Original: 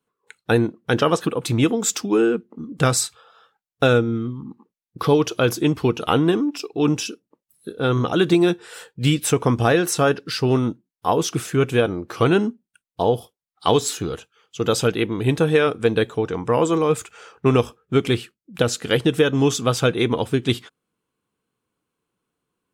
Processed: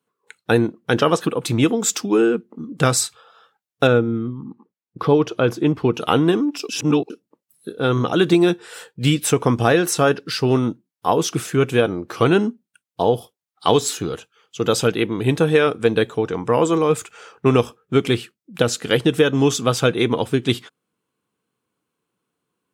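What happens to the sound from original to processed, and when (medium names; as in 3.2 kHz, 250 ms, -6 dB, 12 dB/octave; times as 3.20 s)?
3.87–5.94 s: low-pass 1.8 kHz 6 dB/octave
6.69–7.10 s: reverse
whole clip: high-pass 100 Hz; trim +1.5 dB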